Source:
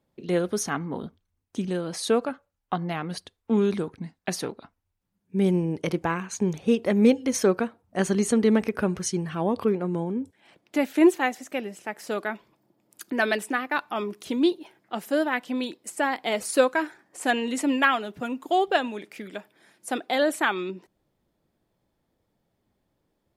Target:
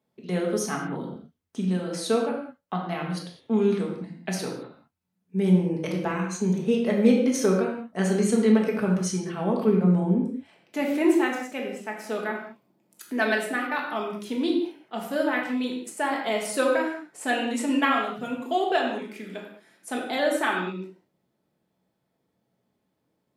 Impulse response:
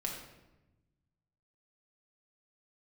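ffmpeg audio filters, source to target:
-filter_complex "[0:a]asettb=1/sr,asplit=3[s0][s1][s2];[s0]atrim=end=9.674[s3];[s1]atrim=start=9.67:end=10.21,asetpts=PTS-STARTPTS,afade=t=in:d=0.004:c=qsin,afade=t=out:st=0.536:d=0.004:c=qsin,lowshelf=f=220:g=9.5[s4];[s2]atrim=start=10.206[s5];[s3][s4]acrossfade=d=0.004:c1=hsin:c2=qsin[s6];[s6][s5]acrossfade=d=0.004:c1=qsin:c2=hsin,highpass=120[s7];[1:a]atrim=start_sample=2205,afade=t=out:st=0.27:d=0.01,atrim=end_sample=12348[s8];[s7][s8]afir=irnorm=-1:irlink=0,volume=0.794"

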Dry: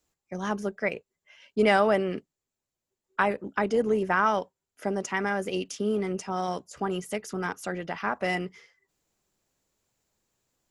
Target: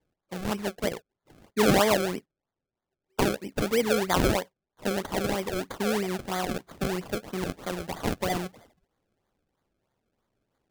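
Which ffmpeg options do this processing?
-af "acrusher=samples=32:mix=1:aa=0.000001:lfo=1:lforange=32:lforate=3.1"

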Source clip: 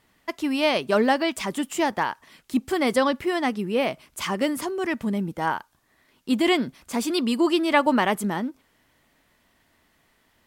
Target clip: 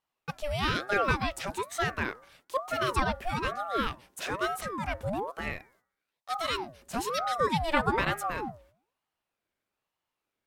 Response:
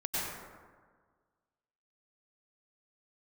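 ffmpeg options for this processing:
-filter_complex "[0:a]agate=range=0.158:threshold=0.00178:ratio=16:detection=peak,asettb=1/sr,asplit=3[s0][s1][s2];[s0]atrim=end=5.414[s3];[s1]atrim=start=5.41:end=6.78,asetpts=PTS-STARTPTS,afade=t=in:d=0.004:c=qsin,afade=t=out:st=1.366:d=0.004:c=qsin,equalizer=f=500:t=o:w=1.6:g=-9.5[s4];[s2]atrim=start=6.776[s5];[s3][s4]acrossfade=d=0.004:c1=hsin:c2=qsin[s6];[s6][s5]acrossfade=d=0.004:c1=qsin:c2=hsin,bandreject=f=123.5:t=h:w=4,bandreject=f=247:t=h:w=4,bandreject=f=370.5:t=h:w=4,bandreject=f=494:t=h:w=4,bandreject=f=617.5:t=h:w=4,bandreject=f=741:t=h:w=4,bandreject=f=864.5:t=h:w=4,bandreject=f=988:t=h:w=4,bandreject=f=1111.5:t=h:w=4,bandreject=f=1235:t=h:w=4,bandreject=f=1358.5:t=h:w=4,bandreject=f=1482:t=h:w=4,bandreject=f=1605.5:t=h:w=4,aeval=exprs='val(0)*sin(2*PI*660*n/s+660*0.55/1.1*sin(2*PI*1.1*n/s))':c=same,volume=0.668"

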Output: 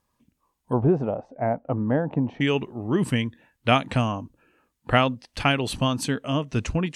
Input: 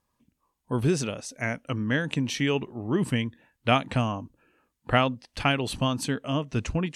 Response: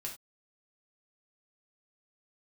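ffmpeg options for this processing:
-filter_complex "[0:a]asettb=1/sr,asplit=3[s0][s1][s2];[s0]atrim=end=0.734[s3];[s1]atrim=start=0.73:end=2.41,asetpts=PTS-STARTPTS,afade=t=in:d=0.004:c=qsin,afade=t=out:st=1.676:d=0.004:c=qsin,lowpass=f=770:t=q:w=3.5[s4];[s2]atrim=start=2.406[s5];[s3][s4]acrossfade=d=0.004:c1=hsin:c2=qsin[s6];[s6][s5]acrossfade=d=0.004:c1=qsin:c2=hsin,volume=1.33"

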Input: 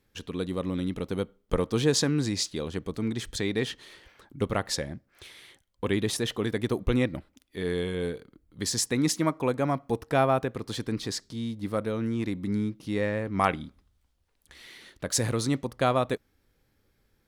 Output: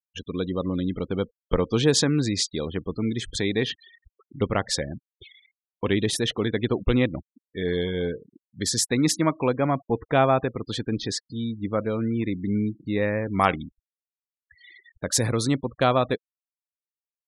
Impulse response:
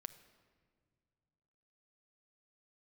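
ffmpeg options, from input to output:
-af "acrusher=bits=8:mix=0:aa=0.000001,afftfilt=real='re*gte(hypot(re,im),0.0112)':imag='im*gte(hypot(re,im),0.0112)':win_size=1024:overlap=0.75,adynamicequalizer=threshold=0.00398:dfrequency=3200:dqfactor=3.1:tfrequency=3200:tqfactor=3.1:attack=5:release=100:ratio=0.375:range=1.5:mode=boostabove:tftype=bell,volume=1.5"

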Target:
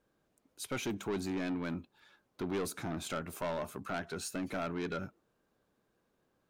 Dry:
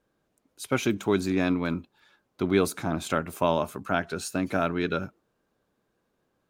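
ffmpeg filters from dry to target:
-filter_complex "[0:a]asplit=2[s0][s1];[s1]acompressor=threshold=0.0158:ratio=6,volume=0.944[s2];[s0][s2]amix=inputs=2:normalize=0,asoftclip=type=tanh:threshold=0.0794,volume=0.398"

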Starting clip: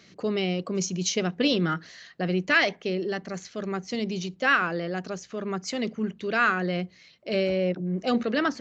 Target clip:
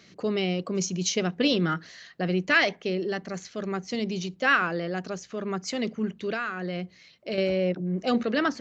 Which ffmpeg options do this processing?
-filter_complex "[0:a]asettb=1/sr,asplit=3[s0][s1][s2];[s0]atrim=end=6.324[s3];[s1]atrim=start=6.32:end=7.38,asetpts=PTS-STARTPTS,afade=t=in:d=0.004:c=qsin,afade=t=out:st=1.056:d=0.004:c=qsin,acompressor=threshold=0.0447:ratio=12[s4];[s2]atrim=start=7.376[s5];[s3][s4]acrossfade=d=0.004:c1=hsin:c2=qsin[s6];[s6][s5]acrossfade=d=0.004:c1=qsin:c2=hsin"

